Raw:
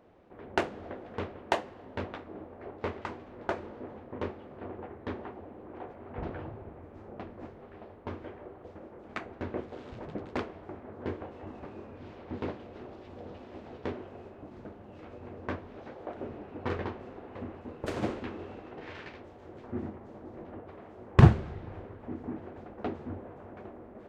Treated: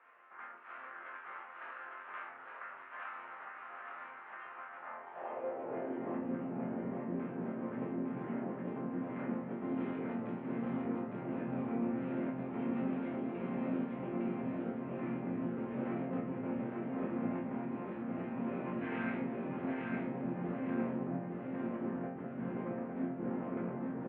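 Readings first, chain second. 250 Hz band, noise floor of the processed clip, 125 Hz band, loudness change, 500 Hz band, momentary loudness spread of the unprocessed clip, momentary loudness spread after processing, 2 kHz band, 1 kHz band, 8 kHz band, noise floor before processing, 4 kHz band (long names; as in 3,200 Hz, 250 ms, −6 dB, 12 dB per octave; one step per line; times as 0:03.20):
+2.0 dB, −50 dBFS, −12.5 dB, −4.0 dB, −2.5 dB, 14 LU, 10 LU, −3.5 dB, −4.0 dB, can't be measured, −50 dBFS, below −10 dB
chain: compressor whose output falls as the input rises −45 dBFS, ratio −1
single-sideband voice off tune −180 Hz 180–2,800 Hz
resonators tuned to a chord F2 sus4, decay 0.55 s
on a send: repeating echo 858 ms, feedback 43%, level −3 dB
on the sum: high-pass filter sweep 1,300 Hz → 210 Hz, 0:04.77–0:06.29
level +15.5 dB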